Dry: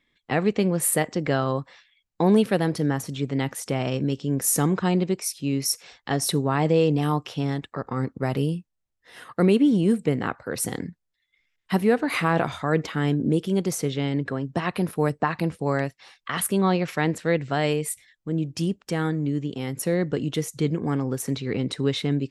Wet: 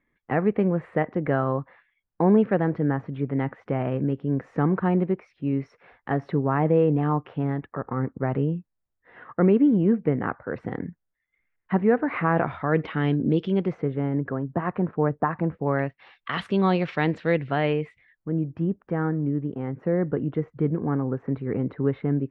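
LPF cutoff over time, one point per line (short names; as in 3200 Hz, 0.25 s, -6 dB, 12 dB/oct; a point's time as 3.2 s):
LPF 24 dB/oct
12.26 s 1900 Hz
13.4 s 3900 Hz
13.9 s 1600 Hz
15.45 s 1600 Hz
16.33 s 3800 Hz
17.16 s 3800 Hz
18.51 s 1600 Hz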